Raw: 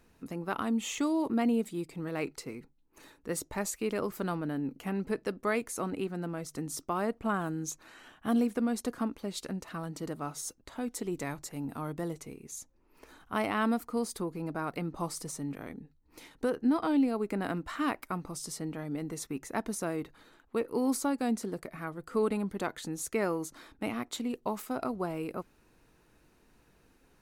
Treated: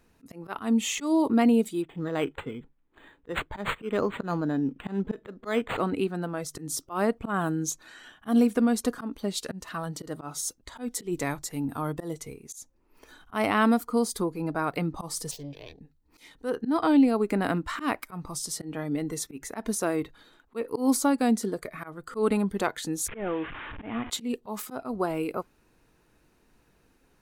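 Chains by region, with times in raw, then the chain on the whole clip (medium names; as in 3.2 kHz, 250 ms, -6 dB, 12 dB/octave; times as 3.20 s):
1.82–5.80 s: treble shelf 12 kHz +10 dB + decimation joined by straight lines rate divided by 8×
15.31–15.81 s: self-modulated delay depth 0.24 ms + resonant high shelf 7 kHz -9.5 dB, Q 1.5 + static phaser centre 550 Hz, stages 4
23.08–24.10 s: one-bit delta coder 16 kbps, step -38.5 dBFS + compression 2:1, threshold -33 dBFS
whole clip: spectral noise reduction 7 dB; slow attack 132 ms; trim +7 dB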